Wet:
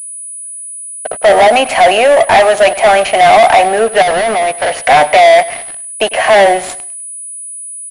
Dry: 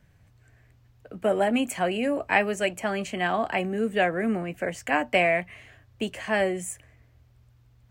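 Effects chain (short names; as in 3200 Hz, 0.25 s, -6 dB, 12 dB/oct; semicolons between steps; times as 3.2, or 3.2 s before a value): in parallel at +2 dB: limiter -19.5 dBFS, peak gain reduction 11.5 dB; on the sum: resonant high-pass 700 Hz, resonance Q 4.9; sample leveller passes 5; 4.02–4.83 overloaded stage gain 7.5 dB; on a send: feedback echo 0.101 s, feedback 33%, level -17.5 dB; on the sum: pulse-width modulation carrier 9900 Hz; gain -3.5 dB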